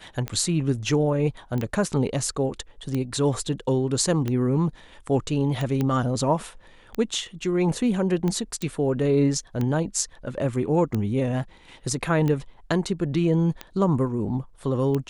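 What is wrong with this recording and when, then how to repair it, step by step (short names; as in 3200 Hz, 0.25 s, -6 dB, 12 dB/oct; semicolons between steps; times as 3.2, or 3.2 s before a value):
tick 45 rpm -15 dBFS
1.58 pop -18 dBFS
5.81 pop -13 dBFS
8.62 pop -16 dBFS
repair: de-click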